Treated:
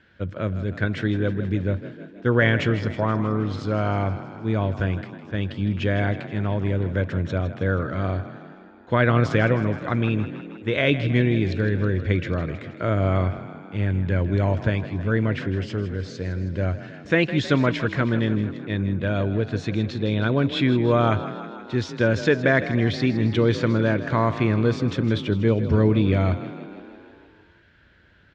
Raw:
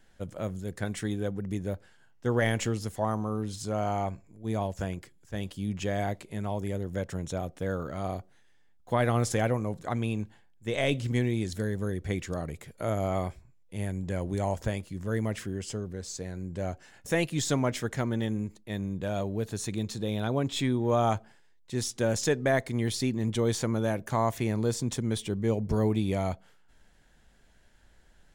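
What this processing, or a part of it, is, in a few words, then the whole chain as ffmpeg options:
frequency-shifting delay pedal into a guitar cabinet: -filter_complex "[0:a]asplit=9[a][b][c][d][e][f][g][h][i];[b]adelay=159,afreqshift=31,volume=-13dB[j];[c]adelay=318,afreqshift=62,volume=-16.7dB[k];[d]adelay=477,afreqshift=93,volume=-20.5dB[l];[e]adelay=636,afreqshift=124,volume=-24.2dB[m];[f]adelay=795,afreqshift=155,volume=-28dB[n];[g]adelay=954,afreqshift=186,volume=-31.7dB[o];[h]adelay=1113,afreqshift=217,volume=-35.5dB[p];[i]adelay=1272,afreqshift=248,volume=-39.2dB[q];[a][j][k][l][m][n][o][p][q]amix=inputs=9:normalize=0,highpass=76,equalizer=f=92:t=q:w=4:g=8,equalizer=f=310:t=q:w=4:g=3,equalizer=f=780:t=q:w=4:g=-9,equalizer=f=1.5k:t=q:w=4:g=7,equalizer=f=2.4k:t=q:w=4:g=3,lowpass=f=4.1k:w=0.5412,lowpass=f=4.1k:w=1.3066,volume=6.5dB"

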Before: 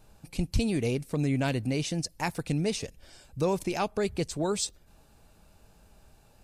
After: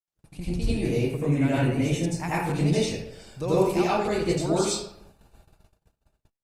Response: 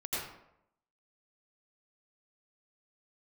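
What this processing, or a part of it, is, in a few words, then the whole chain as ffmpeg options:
speakerphone in a meeting room: -filter_complex "[0:a]asettb=1/sr,asplit=3[a][b][c];[a]atrim=end=1.014[d];[b]atrim=start=1.01:end=2.42,asetpts=PTS-STARTPTS,afade=t=in:d=0.004:c=qsin,afade=t=out:st=1.406:d=0.004:c=qsin,equalizer=f=4.6k:t=o:w=0.53:g=-12[e];[c]atrim=start=2.416[f];[d][e]acrossfade=d=0.004:c1=hsin:c2=qsin[g];[g][f]acrossfade=d=0.004:c1=qsin:c2=hsin[h];[1:a]atrim=start_sample=2205[i];[h][i]afir=irnorm=-1:irlink=0,dynaudnorm=f=200:g=13:m=4dB,agate=range=-43dB:threshold=-48dB:ratio=16:detection=peak,volume=-3dB" -ar 48000 -c:a libopus -b:a 32k

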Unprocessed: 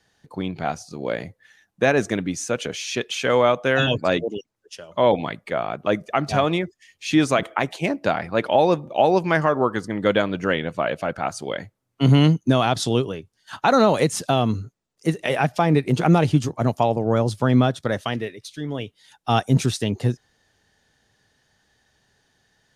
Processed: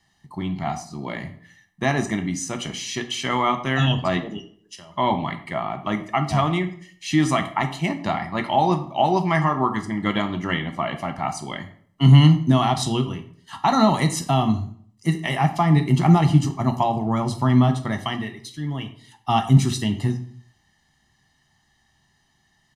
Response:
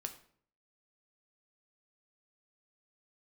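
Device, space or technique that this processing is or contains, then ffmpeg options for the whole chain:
microphone above a desk: -filter_complex "[0:a]aecho=1:1:1:0.84[a];[1:a]atrim=start_sample=2205[b];[a][b]afir=irnorm=-1:irlink=0"

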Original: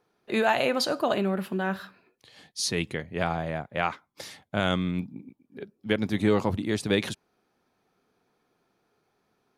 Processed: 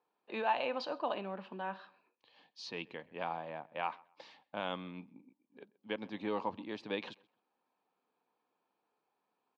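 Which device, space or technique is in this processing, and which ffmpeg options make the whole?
phone earpiece: -filter_complex "[0:a]highpass=370,equalizer=f=390:t=q:w=4:g=-8,equalizer=f=660:t=q:w=4:g=-5,equalizer=f=940:t=q:w=4:g=5,equalizer=f=1.4k:t=q:w=4:g=-8,equalizer=f=2k:t=q:w=4:g=-9,equalizer=f=3.5k:t=q:w=4:g=-5,lowpass=f=3.7k:w=0.5412,lowpass=f=3.7k:w=1.3066,asplit=2[a][b];[b]adelay=130,lowpass=f=3.2k:p=1,volume=-23.5dB,asplit=2[c][d];[d]adelay=130,lowpass=f=3.2k:p=1,volume=0.25[e];[a][c][e]amix=inputs=3:normalize=0,volume=-6.5dB"

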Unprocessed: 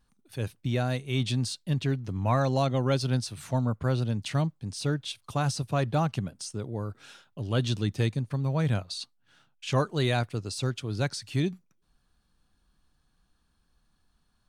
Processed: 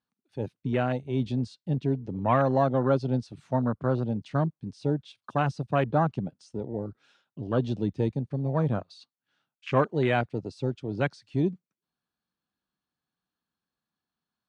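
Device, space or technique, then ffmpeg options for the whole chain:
over-cleaned archive recording: -af "highpass=170,lowpass=5.2k,afwtdn=0.0178,volume=4dB"

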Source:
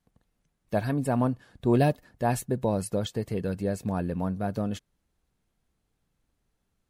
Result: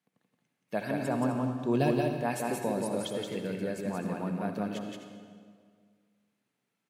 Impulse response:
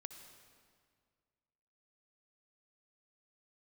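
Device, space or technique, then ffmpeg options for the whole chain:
stadium PA: -filter_complex "[0:a]asettb=1/sr,asplit=3[a][b][c];[a]atrim=end=1.014[d];[b]atrim=start=1.01:end=1.88,asetpts=PTS-STARTPTS,afade=t=in:d=0.004:c=qsin,afade=t=out:st=0.866:d=0.004:c=qsin,equalizer=f=125:t=o:w=0.33:g=8,equalizer=f=2k:t=o:w=0.33:g=-11,equalizer=f=6.3k:t=o:w=0.33:g=10,equalizer=f=10k:t=o:w=0.33:g=-6[e];[c]atrim=start=1.876[f];[d][e]acrossfade=d=0.004:c1=hsin:c2=qsin[g];[g][f]acrossfade=d=0.004:c1=qsin:c2=hsin,highpass=f=160:w=0.5412,highpass=f=160:w=1.3066,equalizer=f=2.3k:t=o:w=0.97:g=7,aecho=1:1:174.9|256.6:0.708|0.251[h];[1:a]atrim=start_sample=2205[i];[h][i]afir=irnorm=-1:irlink=0"

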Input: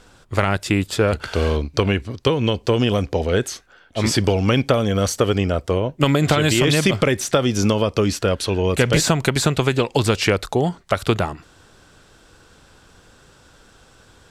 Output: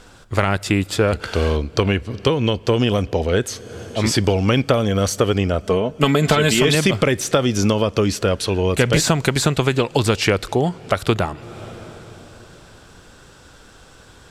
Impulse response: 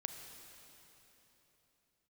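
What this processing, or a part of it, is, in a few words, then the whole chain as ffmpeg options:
ducked reverb: -filter_complex "[0:a]asplit=3[a][b][c];[1:a]atrim=start_sample=2205[d];[b][d]afir=irnorm=-1:irlink=0[e];[c]apad=whole_len=630902[f];[e][f]sidechaincompress=threshold=-34dB:ratio=10:attack=37:release=301,volume=-1.5dB[g];[a][g]amix=inputs=2:normalize=0,asettb=1/sr,asplit=3[h][i][j];[h]atrim=end=5.634[k];[i]atrim=start=5.63:end=6.75,asetpts=PTS-STARTPTS,afade=t=in:d=0.004:c=qsin,afade=t=out:st=1.116:d=0.004:c=qsin,aecho=1:1:4.6:0.56,atrim=end_sample=49392[l];[j]atrim=start=6.746[m];[k][l]acrossfade=d=0.004:c1=hsin:c2=qsin[n];[n][m]acrossfade=d=0.004:c1=qsin:c2=hsin"

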